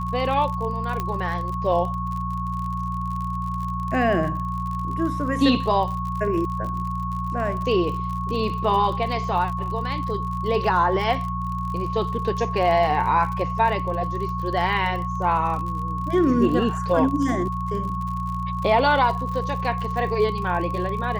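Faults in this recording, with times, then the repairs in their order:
crackle 46 per s -30 dBFS
hum 60 Hz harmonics 3 -29 dBFS
whine 1.1 kHz -28 dBFS
1.00 s: pop -13 dBFS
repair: de-click; de-hum 60 Hz, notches 3; band-stop 1.1 kHz, Q 30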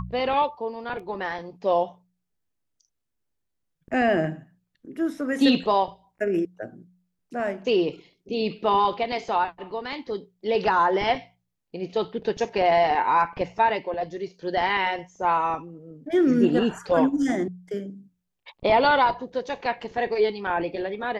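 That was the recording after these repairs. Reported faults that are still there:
1.00 s: pop

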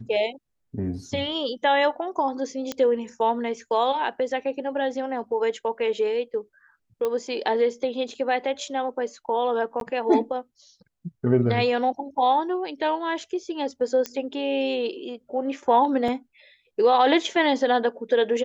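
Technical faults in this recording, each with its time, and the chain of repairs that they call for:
2.72 s: pop -14 dBFS
7.05 s: pop -15 dBFS
9.80–9.81 s: dropout 12 ms
14.06 s: pop -13 dBFS
16.08 s: dropout 3 ms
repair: de-click; interpolate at 9.80 s, 12 ms; interpolate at 16.08 s, 3 ms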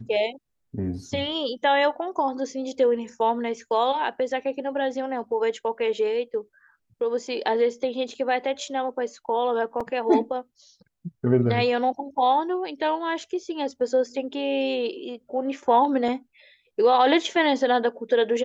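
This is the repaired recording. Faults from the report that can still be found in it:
7.05 s: pop

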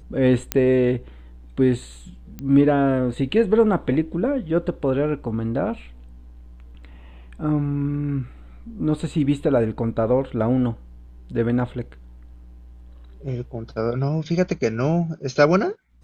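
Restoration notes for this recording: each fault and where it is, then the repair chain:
0.52 s: pop -4 dBFS
2.39 s: pop -19 dBFS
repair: de-click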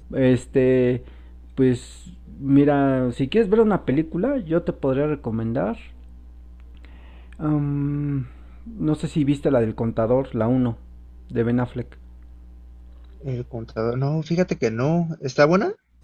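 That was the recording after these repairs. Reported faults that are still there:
nothing left

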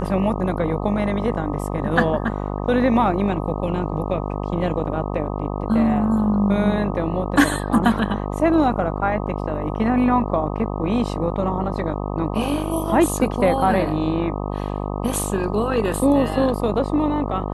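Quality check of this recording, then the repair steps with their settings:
buzz 50 Hz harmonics 25 -26 dBFS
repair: de-hum 50 Hz, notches 25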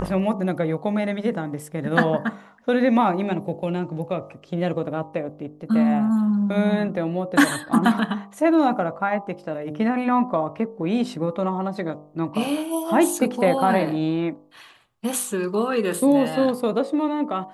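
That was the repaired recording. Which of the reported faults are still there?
nothing left

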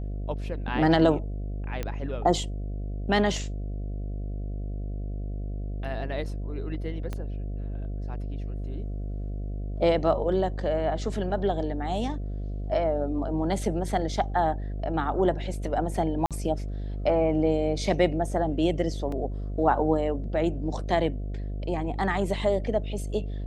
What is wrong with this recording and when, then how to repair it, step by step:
buzz 50 Hz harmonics 14 -32 dBFS
1.83 s: pop -17 dBFS
7.13 s: pop -20 dBFS
16.26–16.31 s: dropout 47 ms
19.12 s: dropout 3.1 ms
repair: de-click; de-hum 50 Hz, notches 14; interpolate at 16.26 s, 47 ms; interpolate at 19.12 s, 3.1 ms

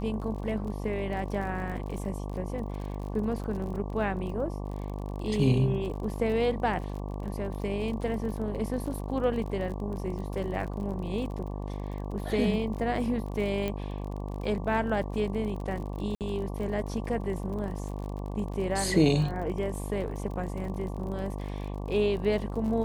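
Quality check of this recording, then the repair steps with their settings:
buzz 50 Hz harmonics 23 -35 dBFS
crackle 42 per s -37 dBFS
13.68 s: pop -19 dBFS
16.15–16.21 s: dropout 58 ms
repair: de-click; de-hum 50 Hz, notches 23; interpolate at 16.15 s, 58 ms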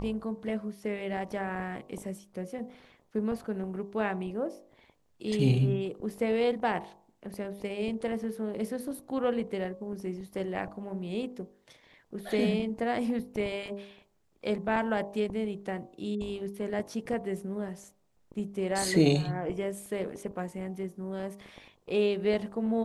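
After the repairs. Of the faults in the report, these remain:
13.68 s: pop

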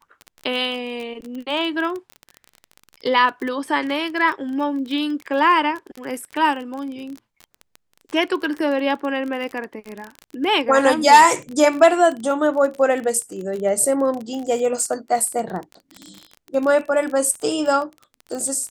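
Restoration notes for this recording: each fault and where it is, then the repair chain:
crackle 24 per s -26 dBFS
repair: de-click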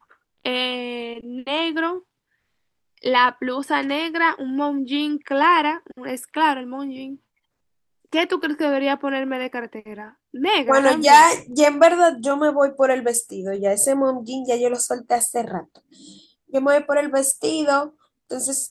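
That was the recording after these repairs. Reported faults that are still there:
nothing left

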